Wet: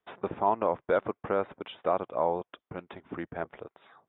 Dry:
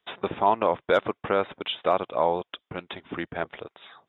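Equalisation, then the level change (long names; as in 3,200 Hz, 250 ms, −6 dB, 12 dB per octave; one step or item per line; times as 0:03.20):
Bessel low-pass filter 1,400 Hz, order 2
−3.5 dB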